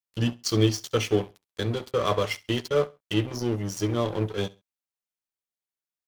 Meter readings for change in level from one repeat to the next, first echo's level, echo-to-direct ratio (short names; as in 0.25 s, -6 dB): -12.5 dB, -21.5 dB, -21.5 dB